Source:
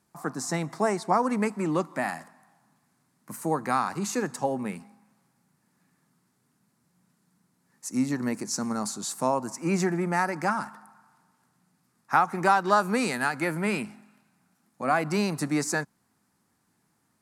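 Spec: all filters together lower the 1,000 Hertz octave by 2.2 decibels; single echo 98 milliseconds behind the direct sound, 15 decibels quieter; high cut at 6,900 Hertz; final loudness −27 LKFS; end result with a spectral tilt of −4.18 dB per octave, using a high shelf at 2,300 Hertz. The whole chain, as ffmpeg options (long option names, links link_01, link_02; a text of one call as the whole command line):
ffmpeg -i in.wav -af "lowpass=6900,equalizer=frequency=1000:width_type=o:gain=-4,highshelf=frequency=2300:gain=5.5,aecho=1:1:98:0.178,volume=1dB" out.wav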